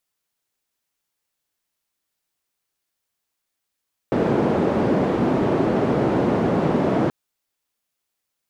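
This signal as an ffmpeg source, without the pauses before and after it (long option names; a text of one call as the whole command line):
ffmpeg -f lavfi -i "anoisesrc=color=white:duration=2.98:sample_rate=44100:seed=1,highpass=frequency=160,lowpass=frequency=400,volume=4.3dB" out.wav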